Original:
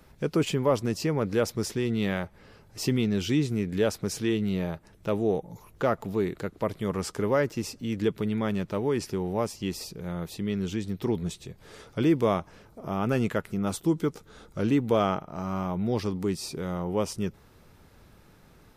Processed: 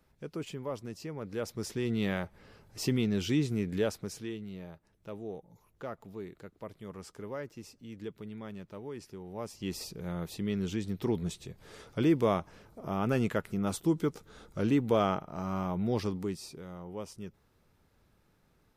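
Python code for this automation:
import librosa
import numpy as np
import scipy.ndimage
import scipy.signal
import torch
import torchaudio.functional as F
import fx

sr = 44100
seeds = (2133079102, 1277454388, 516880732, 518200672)

y = fx.gain(x, sr, db=fx.line((1.16, -13.5), (1.91, -3.5), (3.74, -3.5), (4.45, -15.0), (9.25, -15.0), (9.76, -3.0), (16.06, -3.0), (16.66, -13.0)))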